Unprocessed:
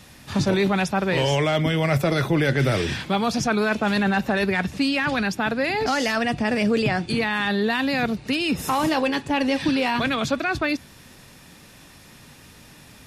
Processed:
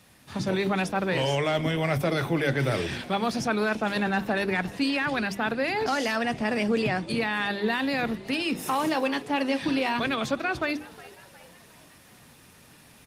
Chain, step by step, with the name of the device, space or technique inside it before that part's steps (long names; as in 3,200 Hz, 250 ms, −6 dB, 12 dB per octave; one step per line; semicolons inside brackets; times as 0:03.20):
mains-hum notches 50/100/150/200/250/300/350/400 Hz
0:08.46–0:09.61: high-pass filter 140 Hz 12 dB per octave
echo with shifted repeats 362 ms, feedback 51%, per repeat +110 Hz, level −19 dB
video call (high-pass filter 100 Hz 6 dB per octave; automatic gain control gain up to 4 dB; level −7 dB; Opus 32 kbit/s 48,000 Hz)